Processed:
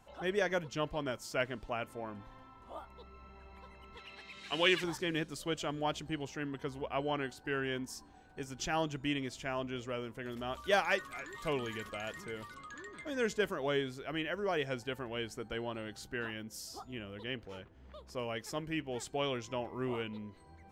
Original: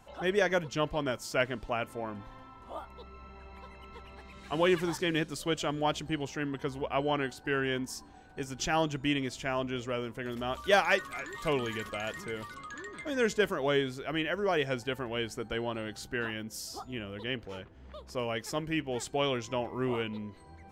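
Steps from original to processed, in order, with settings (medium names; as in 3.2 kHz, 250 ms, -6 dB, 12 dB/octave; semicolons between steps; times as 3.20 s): 3.97–4.84 s: frequency weighting D; trim -5 dB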